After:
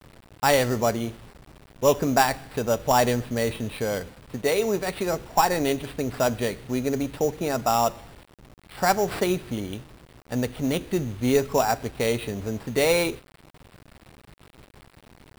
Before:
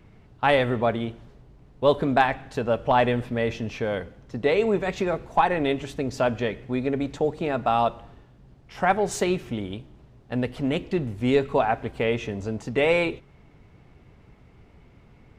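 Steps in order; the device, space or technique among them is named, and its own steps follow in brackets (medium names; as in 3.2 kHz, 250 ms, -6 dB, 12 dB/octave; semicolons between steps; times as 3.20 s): 4.36–5.08 s: bass shelf 450 Hz -3.5 dB; early 8-bit sampler (sample-rate reducer 6.4 kHz, jitter 0%; bit crusher 8-bit)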